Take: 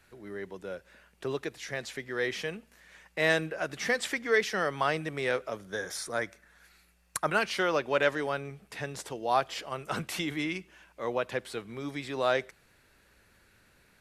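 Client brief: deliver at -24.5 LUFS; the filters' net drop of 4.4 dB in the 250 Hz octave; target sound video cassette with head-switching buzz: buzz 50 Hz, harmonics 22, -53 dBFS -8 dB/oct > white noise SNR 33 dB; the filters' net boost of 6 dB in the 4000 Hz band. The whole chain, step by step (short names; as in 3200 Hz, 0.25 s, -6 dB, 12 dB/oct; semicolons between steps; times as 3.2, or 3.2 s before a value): bell 250 Hz -6.5 dB; bell 4000 Hz +7.5 dB; buzz 50 Hz, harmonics 22, -53 dBFS -8 dB/oct; white noise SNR 33 dB; gain +6.5 dB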